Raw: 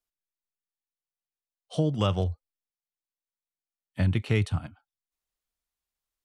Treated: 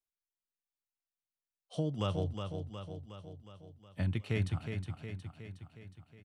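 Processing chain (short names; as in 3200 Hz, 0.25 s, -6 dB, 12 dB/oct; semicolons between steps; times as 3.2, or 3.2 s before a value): feedback echo 0.364 s, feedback 59%, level -6.5 dB; gain -8.5 dB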